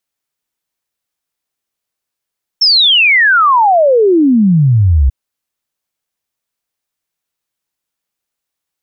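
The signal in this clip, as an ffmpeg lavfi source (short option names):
-f lavfi -i "aevalsrc='0.531*clip(min(t,2.49-t)/0.01,0,1)*sin(2*PI*5500*2.49/log(62/5500)*(exp(log(62/5500)*t/2.49)-1))':d=2.49:s=44100"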